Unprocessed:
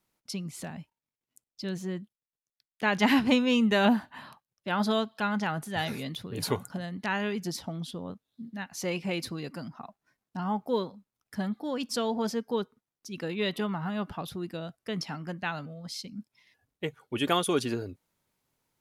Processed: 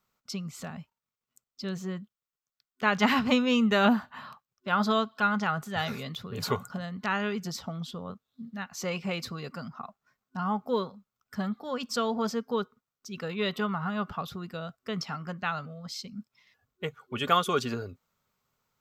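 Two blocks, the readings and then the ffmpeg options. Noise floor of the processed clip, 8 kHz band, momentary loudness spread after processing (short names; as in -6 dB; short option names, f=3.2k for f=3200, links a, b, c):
under -85 dBFS, -2.0 dB, 17 LU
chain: -af "superequalizer=6b=0.355:10b=2.24:16b=0.282"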